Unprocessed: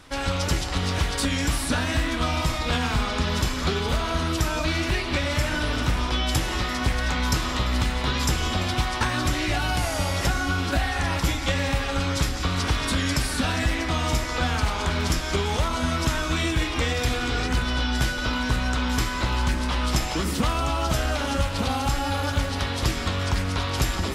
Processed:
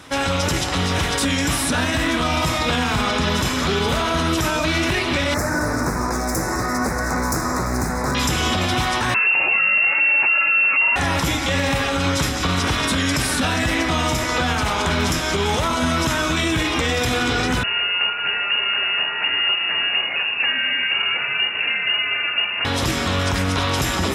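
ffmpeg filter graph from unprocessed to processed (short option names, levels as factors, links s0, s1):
-filter_complex "[0:a]asettb=1/sr,asplit=3[s0][s1][s2];[s0]atrim=end=5.344[s3];[s1]atrim=start=5.34:end=8.15,asetpts=PTS-STARTPTS,afade=t=in:d=0.004:c=qsin,afade=t=out:st=2.806:d=0.004:c=qsin,aeval=exprs='0.0944*(abs(mod(val(0)/0.0944+3,4)-2)-1)':c=same,asuperstop=centerf=3100:order=4:qfactor=0.87[s4];[s2]atrim=start=8.146[s5];[s3][s4]acrossfade=d=0.004:c1=hsin:c2=qsin[s6];[s6][s5]acrossfade=d=0.004:c1=qsin:c2=hsin,asettb=1/sr,asplit=3[s7][s8][s9];[s7]atrim=end=9.144[s10];[s8]atrim=start=9.14:end=10.96,asetpts=PTS-STARTPTS,afade=t=in:d=0.004:c=qsin,afade=t=out:st=1.816:d=0.004:c=qsin,lowshelf=f=170:t=q:w=1.5:g=9,bandreject=f=50:t=h:w=6,bandreject=f=100:t=h:w=6,bandreject=f=150:t=h:w=6,bandreject=f=200:t=h:w=6,bandreject=f=250:t=h:w=6,bandreject=f=300:t=h:w=6,bandreject=f=350:t=h:w=6,lowpass=f=2400:t=q:w=0.5098,lowpass=f=2400:t=q:w=0.6013,lowpass=f=2400:t=q:w=0.9,lowpass=f=2400:t=q:w=2.563,afreqshift=-2800[s11];[s9]atrim=start=10.956[s12];[s10][s11]acrossfade=d=0.004:c1=hsin:c2=qsin[s13];[s13][s12]acrossfade=d=0.004:c1=qsin:c2=hsin,asettb=1/sr,asplit=3[s14][s15][s16];[s14]atrim=end=17.634[s17];[s15]atrim=start=17.63:end=22.65,asetpts=PTS-STARTPTS,afade=t=in:d=0.004:c=qsin,afade=t=out:st=5.016:d=0.004:c=qsin,flanger=delay=1.3:depth=6.6:regen=85:speed=1.6:shape=sinusoidal,lowpass=f=2500:t=q:w=0.5098,lowpass=f=2500:t=q:w=0.6013,lowpass=f=2500:t=q:w=0.9,lowpass=f=2500:t=q:w=2.563,afreqshift=-2900[s18];[s16]atrim=start=22.646[s19];[s17][s18]acrossfade=d=0.004:c1=hsin:c2=qsin[s20];[s20][s19]acrossfade=d=0.004:c1=qsin:c2=hsin,highpass=97,bandreject=f=4500:w=11,alimiter=limit=0.112:level=0:latency=1:release=22,volume=2.51"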